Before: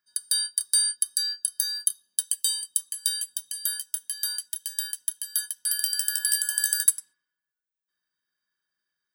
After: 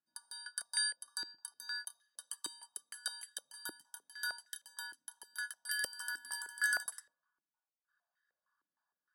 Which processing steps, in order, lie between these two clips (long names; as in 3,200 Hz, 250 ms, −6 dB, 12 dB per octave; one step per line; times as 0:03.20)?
phaser with its sweep stopped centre 970 Hz, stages 4
band-pass on a step sequencer 6.5 Hz 320–1,900 Hz
level +14.5 dB